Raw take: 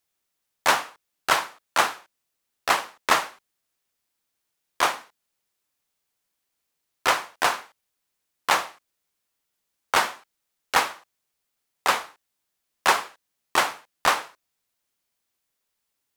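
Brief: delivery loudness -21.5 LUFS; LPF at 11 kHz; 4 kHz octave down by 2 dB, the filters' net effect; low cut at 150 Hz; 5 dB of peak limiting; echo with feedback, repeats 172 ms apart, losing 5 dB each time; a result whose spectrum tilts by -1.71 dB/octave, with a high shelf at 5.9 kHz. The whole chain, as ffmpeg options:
-af "highpass=150,lowpass=11000,equalizer=f=4000:t=o:g=-4,highshelf=f=5900:g=4,alimiter=limit=0.316:level=0:latency=1,aecho=1:1:172|344|516|688|860|1032|1204:0.562|0.315|0.176|0.0988|0.0553|0.031|0.0173,volume=1.88"

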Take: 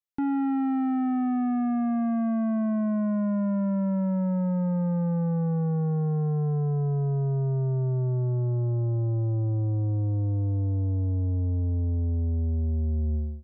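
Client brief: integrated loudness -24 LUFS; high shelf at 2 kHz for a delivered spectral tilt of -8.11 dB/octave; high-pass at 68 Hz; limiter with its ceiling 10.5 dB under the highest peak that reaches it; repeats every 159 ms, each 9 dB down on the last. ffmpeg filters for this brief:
-af "highpass=68,highshelf=f=2000:g=4.5,alimiter=level_in=2.24:limit=0.0631:level=0:latency=1,volume=0.447,aecho=1:1:159|318|477|636:0.355|0.124|0.0435|0.0152,volume=3.98"

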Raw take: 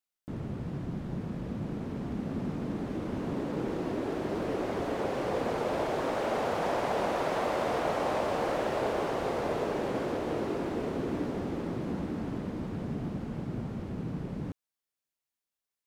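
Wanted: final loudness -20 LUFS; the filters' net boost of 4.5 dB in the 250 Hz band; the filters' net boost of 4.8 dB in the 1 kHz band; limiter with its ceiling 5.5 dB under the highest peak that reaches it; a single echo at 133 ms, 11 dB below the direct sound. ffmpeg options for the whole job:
-af "equalizer=f=250:t=o:g=5.5,equalizer=f=1000:t=o:g=6,alimiter=limit=0.1:level=0:latency=1,aecho=1:1:133:0.282,volume=3.16"

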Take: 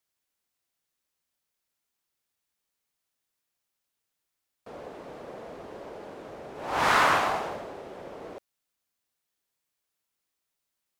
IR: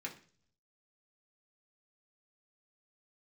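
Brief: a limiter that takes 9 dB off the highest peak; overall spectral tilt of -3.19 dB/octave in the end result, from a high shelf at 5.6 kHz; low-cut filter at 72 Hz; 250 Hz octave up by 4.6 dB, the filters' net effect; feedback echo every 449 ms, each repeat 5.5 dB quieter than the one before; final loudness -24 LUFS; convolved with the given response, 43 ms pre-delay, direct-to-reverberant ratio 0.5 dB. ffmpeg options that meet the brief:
-filter_complex "[0:a]highpass=72,equalizer=f=250:t=o:g=6,highshelf=f=5600:g=9,alimiter=limit=0.133:level=0:latency=1,aecho=1:1:449|898|1347|1796|2245|2694|3143:0.531|0.281|0.149|0.079|0.0419|0.0222|0.0118,asplit=2[s0][s1];[1:a]atrim=start_sample=2205,adelay=43[s2];[s1][s2]afir=irnorm=-1:irlink=0,volume=1[s3];[s0][s3]amix=inputs=2:normalize=0,volume=1.88"

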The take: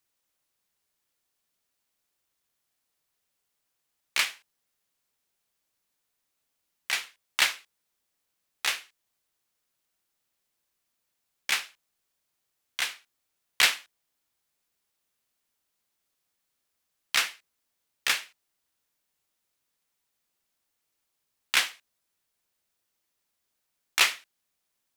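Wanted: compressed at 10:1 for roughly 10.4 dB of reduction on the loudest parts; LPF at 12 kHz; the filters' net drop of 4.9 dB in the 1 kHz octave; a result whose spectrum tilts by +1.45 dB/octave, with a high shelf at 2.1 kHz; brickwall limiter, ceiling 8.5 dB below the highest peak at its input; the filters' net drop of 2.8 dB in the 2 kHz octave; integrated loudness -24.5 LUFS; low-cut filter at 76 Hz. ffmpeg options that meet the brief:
-af "highpass=76,lowpass=12000,equalizer=f=1000:t=o:g=-6,equalizer=f=2000:t=o:g=-5.5,highshelf=f=2100:g=5,acompressor=threshold=0.0501:ratio=10,volume=3.76,alimiter=limit=0.501:level=0:latency=1"

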